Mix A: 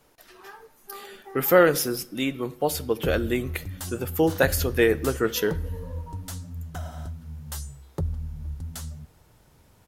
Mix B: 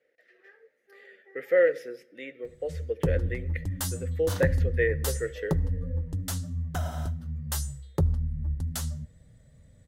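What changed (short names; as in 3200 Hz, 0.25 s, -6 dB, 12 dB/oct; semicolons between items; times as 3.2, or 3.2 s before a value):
speech: add double band-pass 980 Hz, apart 1.9 oct; background +4.0 dB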